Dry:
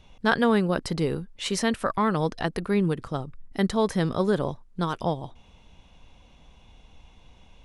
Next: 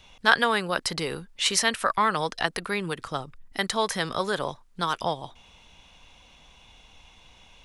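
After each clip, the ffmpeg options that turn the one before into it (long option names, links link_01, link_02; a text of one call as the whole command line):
ffmpeg -i in.wav -filter_complex "[0:a]tiltshelf=frequency=740:gain=-6.5,acrossover=split=490|1300[link_01][link_02][link_03];[link_01]alimiter=level_in=4.5dB:limit=-24dB:level=0:latency=1:release=271,volume=-4.5dB[link_04];[link_04][link_02][link_03]amix=inputs=3:normalize=0,volume=1.5dB" out.wav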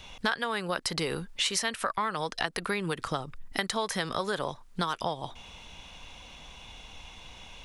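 ffmpeg -i in.wav -af "acompressor=threshold=-33dB:ratio=6,volume=6dB" out.wav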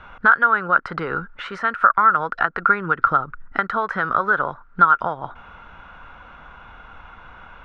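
ffmpeg -i in.wav -af "lowpass=frequency=1400:width_type=q:width=12,volume=3.5dB" out.wav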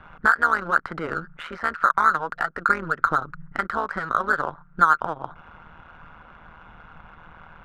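ffmpeg -i in.wav -af "tremolo=f=160:d=0.824,adynamicsmooth=sensitivity=7:basefreq=3600" out.wav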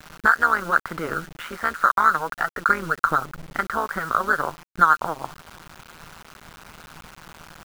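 ffmpeg -i in.wav -af "acrusher=bits=6:mix=0:aa=0.000001,volume=1dB" out.wav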